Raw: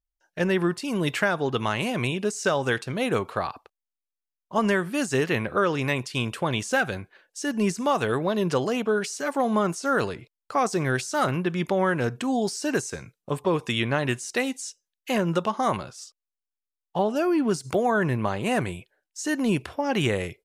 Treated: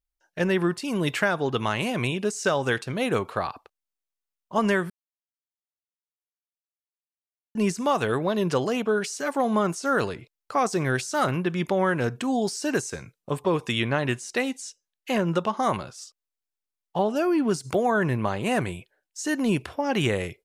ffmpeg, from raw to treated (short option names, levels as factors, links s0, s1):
-filter_complex "[0:a]asettb=1/sr,asplit=3[s0][s1][s2];[s0]atrim=end=13.894[s3];[s1]atrim=start=13.89:end=15.57,asetpts=PTS-STARTPTS,afade=t=in:d=0.004:c=qsin,afade=t=out:st=1.676:d=0.004:c=qsin,highshelf=f=6500:g=-5[s4];[s2]atrim=start=15.566[s5];[s3][s4]acrossfade=d=0.004:c1=hsin:c2=qsin[s6];[s6][s5]acrossfade=d=0.004:c1=qsin:c2=hsin,asplit=3[s7][s8][s9];[s7]atrim=end=4.9,asetpts=PTS-STARTPTS,afade=t=out:st=4.896:d=0.004:c=hsin[s10];[s8]atrim=start=4.9:end=7.55,asetpts=PTS-STARTPTS,volume=0[s11];[s9]atrim=start=7.55,asetpts=PTS-STARTPTS,afade=t=in:d=0.004:c=hsin[s12];[s10][s11][s12]concat=n=3:v=0:a=1"